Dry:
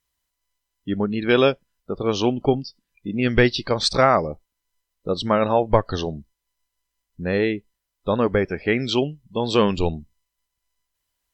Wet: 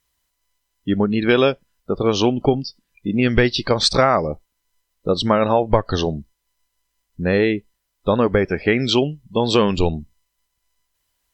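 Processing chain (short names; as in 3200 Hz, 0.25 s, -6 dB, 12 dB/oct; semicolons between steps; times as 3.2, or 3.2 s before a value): compressor 2.5:1, threshold -19 dBFS, peak gain reduction 6.5 dB; gain +6 dB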